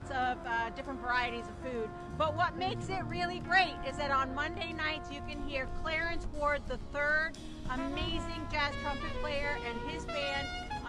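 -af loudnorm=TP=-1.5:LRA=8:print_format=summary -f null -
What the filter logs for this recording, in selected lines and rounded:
Input Integrated:    -34.7 LUFS
Input True Peak:     -15.2 dBTP
Input LRA:             3.1 LU
Input Threshold:     -44.7 LUFS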